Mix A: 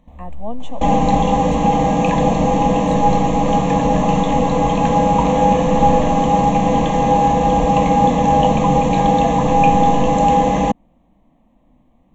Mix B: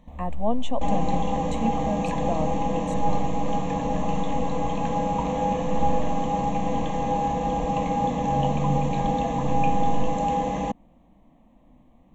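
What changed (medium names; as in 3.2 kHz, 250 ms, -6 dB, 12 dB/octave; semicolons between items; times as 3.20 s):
speech +3.5 dB; second sound -11.0 dB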